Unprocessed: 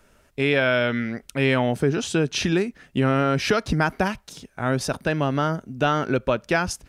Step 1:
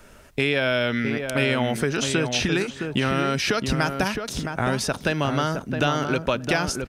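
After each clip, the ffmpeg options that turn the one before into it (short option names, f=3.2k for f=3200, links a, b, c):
-filter_complex "[0:a]acrossover=split=890|3100[a][b][c];[a]acompressor=threshold=-33dB:ratio=4[d];[b]acompressor=threshold=-37dB:ratio=4[e];[c]acompressor=threshold=-37dB:ratio=4[f];[d][e][f]amix=inputs=3:normalize=0,asplit=2[g][h];[h]adelay=665,lowpass=f=1.5k:p=1,volume=-5.5dB,asplit=2[i][j];[j]adelay=665,lowpass=f=1.5k:p=1,volume=0.15,asplit=2[k][l];[l]adelay=665,lowpass=f=1.5k:p=1,volume=0.15[m];[i][k][m]amix=inputs=3:normalize=0[n];[g][n]amix=inputs=2:normalize=0,volume=8.5dB"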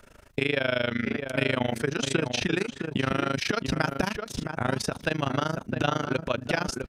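-af "highshelf=f=7k:g=-4,tremolo=f=26:d=0.947"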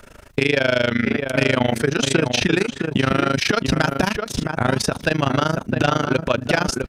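-af "aeval=exprs='0.447*sin(PI/2*1.78*val(0)/0.447)':c=same"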